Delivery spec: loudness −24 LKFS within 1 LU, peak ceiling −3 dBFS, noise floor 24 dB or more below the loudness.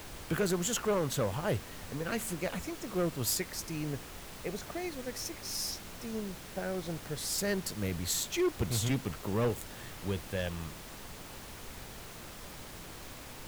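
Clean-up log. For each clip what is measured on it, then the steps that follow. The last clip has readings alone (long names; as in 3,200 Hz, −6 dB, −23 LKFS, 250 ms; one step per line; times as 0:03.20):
share of clipped samples 1.0%; peaks flattened at −24.5 dBFS; background noise floor −47 dBFS; target noise floor −59 dBFS; integrated loudness −34.5 LKFS; sample peak −24.5 dBFS; target loudness −24.0 LKFS
→ clipped peaks rebuilt −24.5 dBFS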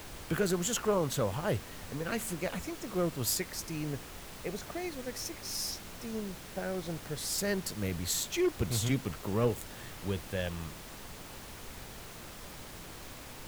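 share of clipped samples 0.0%; background noise floor −47 dBFS; target noise floor −58 dBFS
→ noise reduction from a noise print 11 dB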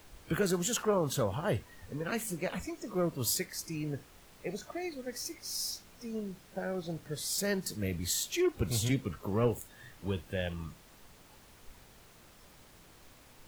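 background noise floor −58 dBFS; target noise floor −59 dBFS
→ noise reduction from a noise print 6 dB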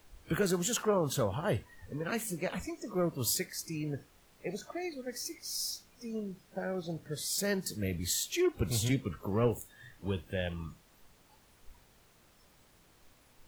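background noise floor −64 dBFS; integrated loudness −34.5 LKFS; sample peak −18.0 dBFS; target loudness −24.0 LKFS
→ level +10.5 dB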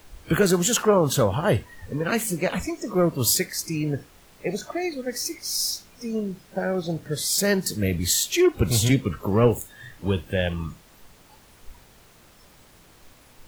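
integrated loudness −24.0 LKFS; sample peak −7.5 dBFS; background noise floor −53 dBFS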